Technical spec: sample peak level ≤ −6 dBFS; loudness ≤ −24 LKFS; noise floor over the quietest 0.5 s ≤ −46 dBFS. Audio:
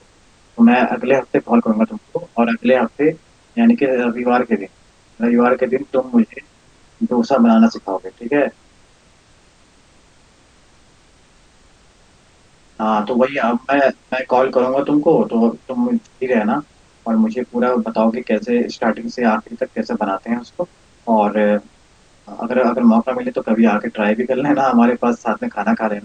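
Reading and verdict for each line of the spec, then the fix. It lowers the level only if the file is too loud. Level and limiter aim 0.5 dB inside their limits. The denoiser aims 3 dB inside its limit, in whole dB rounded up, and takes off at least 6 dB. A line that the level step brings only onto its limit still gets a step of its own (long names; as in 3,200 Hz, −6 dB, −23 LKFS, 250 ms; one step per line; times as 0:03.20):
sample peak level −2.5 dBFS: out of spec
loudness −17.0 LKFS: out of spec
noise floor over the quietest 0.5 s −51 dBFS: in spec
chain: level −7.5 dB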